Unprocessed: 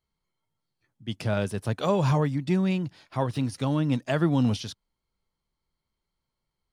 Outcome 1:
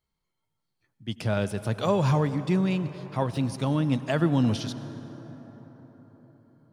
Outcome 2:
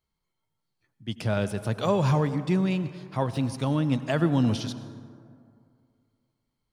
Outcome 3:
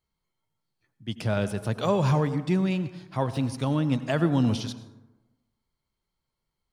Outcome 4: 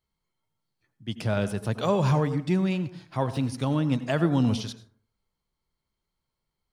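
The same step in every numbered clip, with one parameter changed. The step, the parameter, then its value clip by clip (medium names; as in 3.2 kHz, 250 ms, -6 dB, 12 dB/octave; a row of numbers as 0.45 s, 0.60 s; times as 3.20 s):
plate-style reverb, RT60: 5.1 s, 2.3 s, 1.1 s, 0.52 s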